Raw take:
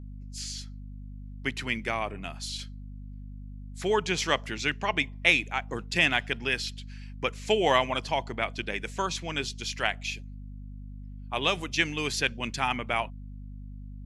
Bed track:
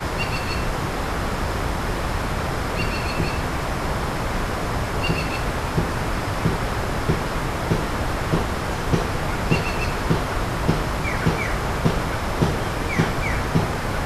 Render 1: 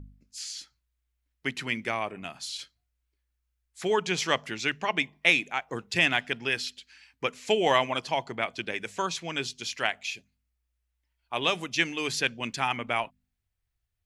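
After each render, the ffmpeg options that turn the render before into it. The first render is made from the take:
-af "bandreject=f=50:t=h:w=4,bandreject=f=100:t=h:w=4,bandreject=f=150:t=h:w=4,bandreject=f=200:t=h:w=4,bandreject=f=250:t=h:w=4"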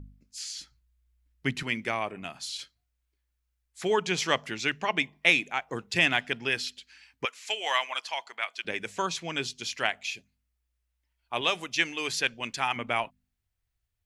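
-filter_complex "[0:a]asettb=1/sr,asplit=3[a][b][c];[a]atrim=end=0.594[d];[b]atrim=start=0.59:end=1.63,asetpts=PTS-STARTPTS,afade=t=in:d=0.004:c=qsin,afade=t=out:st=1.036:d=0.004:c=qsin,bass=f=250:g=10,treble=f=4k:g=0[e];[c]atrim=start=1.626[f];[d][e]acrossfade=d=0.004:c1=hsin:c2=qsin[g];[g][f]acrossfade=d=0.004:c1=qsin:c2=hsin,asettb=1/sr,asplit=3[h][i][j];[h]atrim=end=7.254[k];[i]atrim=start=7.25:end=8.65,asetpts=PTS-STARTPTS,afade=t=in:d=0.004:c=qsin,afade=t=out:st=1.396:d=0.004:c=qsin,highpass=1.1k[l];[j]atrim=start=8.646[m];[k][l]acrossfade=d=0.004:c1=hsin:c2=qsin[n];[n][m]acrossfade=d=0.004:c1=qsin:c2=hsin,asettb=1/sr,asplit=3[o][p][q];[o]atrim=end=11.414[r];[p]atrim=start=11.41:end=12.76,asetpts=PTS-STARTPTS,afade=t=in:d=0.004:c=qsin,afade=t=out:st=1.346:d=0.004:c=qsin,equalizer=f=170:t=o:w=2.3:g=-6.5[s];[q]atrim=start=12.756[t];[r][s]acrossfade=d=0.004:c1=hsin:c2=qsin[u];[u][t]acrossfade=d=0.004:c1=qsin:c2=hsin"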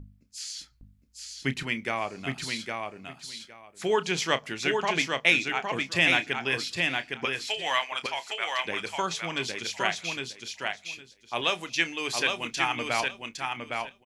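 -filter_complex "[0:a]asplit=2[a][b];[b]adelay=30,volume=-13dB[c];[a][c]amix=inputs=2:normalize=0,asplit=2[d][e];[e]aecho=0:1:811|1622|2433:0.631|0.107|0.0182[f];[d][f]amix=inputs=2:normalize=0"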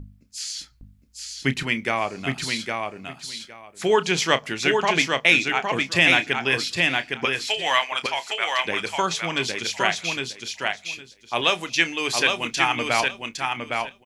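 -af "volume=6dB,alimiter=limit=-3dB:level=0:latency=1"

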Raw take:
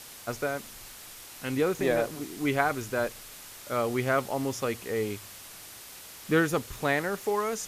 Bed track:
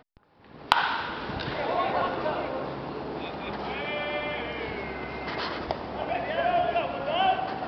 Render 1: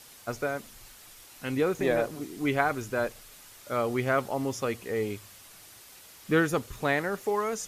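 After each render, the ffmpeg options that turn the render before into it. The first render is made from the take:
-af "afftdn=nr=6:nf=-46"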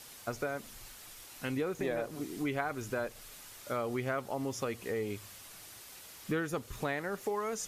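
-af "acompressor=threshold=-33dB:ratio=3"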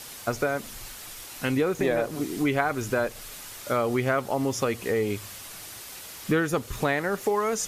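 -af "volume=9.5dB"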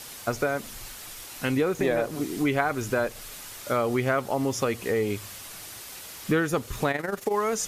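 -filter_complex "[0:a]asplit=3[a][b][c];[a]afade=t=out:st=6.89:d=0.02[d];[b]tremolo=f=22:d=0.71,afade=t=in:st=6.89:d=0.02,afade=t=out:st=7.32:d=0.02[e];[c]afade=t=in:st=7.32:d=0.02[f];[d][e][f]amix=inputs=3:normalize=0"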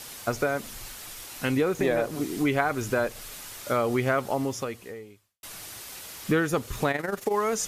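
-filter_complex "[0:a]asplit=2[a][b];[a]atrim=end=5.43,asetpts=PTS-STARTPTS,afade=t=out:st=4.32:d=1.11:c=qua[c];[b]atrim=start=5.43,asetpts=PTS-STARTPTS,afade=t=in:d=0.004:c=hsin[d];[c][d]concat=n=2:v=0:a=1"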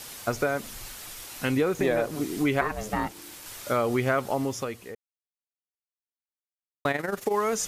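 -filter_complex "[0:a]asettb=1/sr,asplit=3[a][b][c];[a]atrim=end=2.614[d];[b]atrim=start=2.61:end=3.46,asetpts=PTS-STARTPTS,afade=t=in:d=0.004:c=qsin,afade=t=out:st=0.846:d=0.004:c=qsin,aeval=exprs='val(0)*sin(2*PI*320*n/s)':c=same[e];[c]atrim=start=3.456[f];[d][e]acrossfade=d=0.004:c1=hsin:c2=qsin[g];[g][f]acrossfade=d=0.004:c1=qsin:c2=hsin,asplit=3[h][i][j];[h]atrim=end=4.95,asetpts=PTS-STARTPTS,afade=t=out:st=4.946:d=0.004:c=hsin[k];[i]atrim=start=4.95:end=6.85,asetpts=PTS-STARTPTS,volume=0[l];[j]atrim=start=6.85,asetpts=PTS-STARTPTS,afade=t=in:d=0.004:c=hsin[m];[k][l][m]concat=n=3:v=0:a=1"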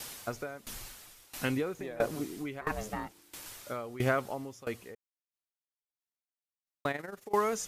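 -af "aeval=exprs='val(0)*pow(10,-20*if(lt(mod(1.5*n/s,1),2*abs(1.5)/1000),1-mod(1.5*n/s,1)/(2*abs(1.5)/1000),(mod(1.5*n/s,1)-2*abs(1.5)/1000)/(1-2*abs(1.5)/1000))/20)':c=same"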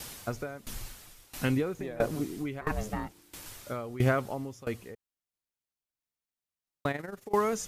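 -af "lowshelf=f=230:g=9"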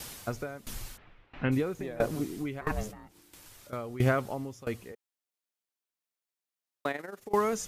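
-filter_complex "[0:a]asplit=3[a][b][c];[a]afade=t=out:st=0.96:d=0.02[d];[b]lowpass=f=2.6k:w=0.5412,lowpass=f=2.6k:w=1.3066,afade=t=in:st=0.96:d=0.02,afade=t=out:st=1.51:d=0.02[e];[c]afade=t=in:st=1.51:d=0.02[f];[d][e][f]amix=inputs=3:normalize=0,asettb=1/sr,asplit=3[g][h][i];[g]atrim=end=2.914[j];[h]atrim=start=2.91:end=3.73,asetpts=PTS-STARTPTS,afade=t=in:d=0.004:c=qsin,afade=t=out:st=0.816:d=0.004:c=qsin,acompressor=threshold=-52dB:ratio=2.5:attack=3.2:release=140:knee=1:detection=peak[k];[i]atrim=start=3.726[l];[j][k]acrossfade=d=0.004:c1=hsin:c2=qsin[m];[m][l]acrossfade=d=0.004:c1=qsin:c2=hsin,asettb=1/sr,asplit=3[n][o][p];[n]atrim=end=4.924[q];[o]atrim=start=4.92:end=7.2,asetpts=PTS-STARTPTS,afade=t=in:d=0.004:c=qsin,afade=t=out:st=2.276:d=0.004:c=qsin,highpass=280[r];[p]atrim=start=7.196[s];[q][r]acrossfade=d=0.004:c1=hsin:c2=qsin[t];[t][s]acrossfade=d=0.004:c1=qsin:c2=hsin"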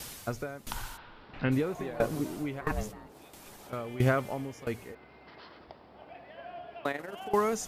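-filter_complex "[1:a]volume=-19.5dB[a];[0:a][a]amix=inputs=2:normalize=0"

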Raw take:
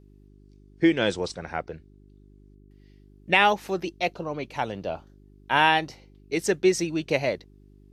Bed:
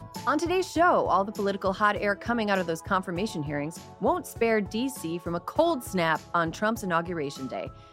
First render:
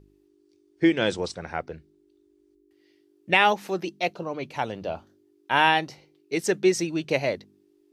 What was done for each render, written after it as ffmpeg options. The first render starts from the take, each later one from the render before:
-af "bandreject=f=50:t=h:w=4,bandreject=f=100:t=h:w=4,bandreject=f=150:t=h:w=4,bandreject=f=200:t=h:w=4,bandreject=f=250:t=h:w=4"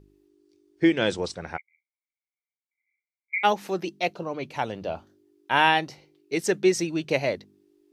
-filter_complex "[0:a]asplit=3[a][b][c];[a]afade=t=out:st=1.56:d=0.02[d];[b]asuperpass=centerf=2200:order=12:qfactor=6.7,afade=t=in:st=1.56:d=0.02,afade=t=out:st=3.43:d=0.02[e];[c]afade=t=in:st=3.43:d=0.02[f];[d][e][f]amix=inputs=3:normalize=0"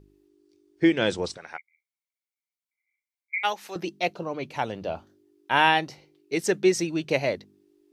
-filter_complex "[0:a]asettb=1/sr,asplit=3[a][b][c];[a]atrim=end=1.374[d];[b]atrim=start=1.37:end=3.76,asetpts=PTS-STARTPTS,afade=t=in:d=0.004:c=qsin,afade=t=out:st=2.386:d=0.004:c=qsin,highpass=f=1.3k:p=1[e];[c]atrim=start=3.756[f];[d][e]acrossfade=d=0.004:c1=hsin:c2=qsin[g];[g][f]acrossfade=d=0.004:c1=qsin:c2=hsin"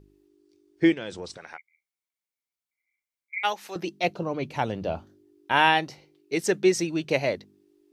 -filter_complex "[0:a]asplit=3[a][b][c];[a]afade=t=out:st=0.93:d=0.02[d];[b]acompressor=threshold=-36dB:ratio=2.5:attack=3.2:release=140:knee=1:detection=peak,afade=t=in:st=0.93:d=0.02,afade=t=out:st=3.36:d=0.02[e];[c]afade=t=in:st=3.36:d=0.02[f];[d][e][f]amix=inputs=3:normalize=0,asettb=1/sr,asplit=3[g][h][i];[g]atrim=end=4.044[j];[h]atrim=start=4.04:end=5.52,asetpts=PTS-STARTPTS,afade=t=in:d=0.004:c=qsin,afade=t=out:st=1.476:d=0.004:c=qsin,lowshelf=f=290:g=7[k];[i]atrim=start=5.516[l];[j][k]acrossfade=d=0.004:c1=hsin:c2=qsin[m];[m][l]acrossfade=d=0.004:c1=qsin:c2=hsin"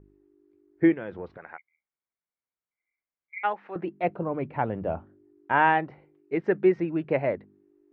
-af "lowpass=f=1.9k:w=0.5412,lowpass=f=1.9k:w=1.3066"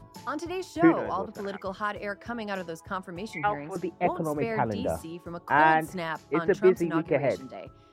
-filter_complex "[1:a]volume=-7.5dB[a];[0:a][a]amix=inputs=2:normalize=0"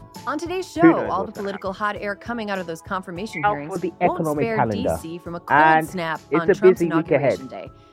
-af "volume=7dB,alimiter=limit=-2dB:level=0:latency=1"

